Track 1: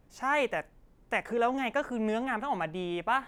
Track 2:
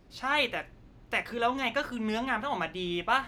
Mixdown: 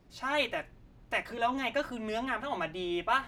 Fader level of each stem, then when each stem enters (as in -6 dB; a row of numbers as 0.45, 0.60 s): -5.5, -4.0 dB; 0.00, 0.00 s